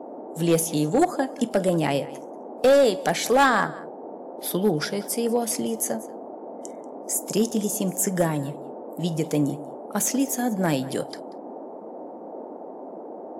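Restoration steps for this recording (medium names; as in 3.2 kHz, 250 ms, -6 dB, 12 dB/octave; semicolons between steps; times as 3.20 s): clip repair -12.5 dBFS; band-stop 900 Hz, Q 30; noise print and reduce 30 dB; inverse comb 187 ms -19.5 dB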